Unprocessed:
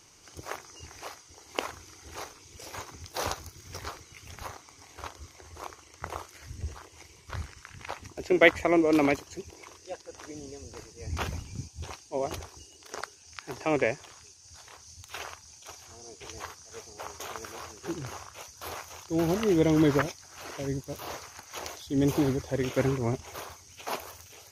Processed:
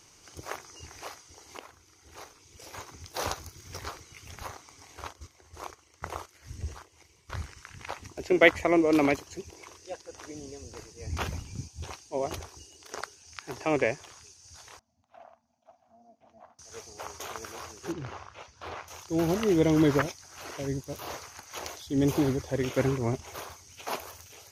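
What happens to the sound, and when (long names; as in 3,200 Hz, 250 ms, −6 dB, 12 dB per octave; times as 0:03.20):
0:01.58–0:03.33: fade in, from −14.5 dB
0:05.04–0:07.32: noise gate −48 dBFS, range −8 dB
0:14.79–0:16.59: pair of resonant band-passes 400 Hz, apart 1.5 octaves
0:17.92–0:18.88: low-pass filter 3,300 Hz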